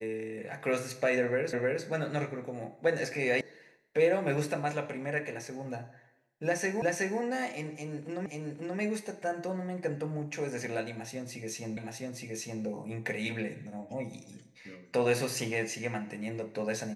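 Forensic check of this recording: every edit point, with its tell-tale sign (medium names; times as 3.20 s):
1.53 s: repeat of the last 0.31 s
3.41 s: sound stops dead
6.82 s: repeat of the last 0.37 s
8.26 s: repeat of the last 0.53 s
11.77 s: repeat of the last 0.87 s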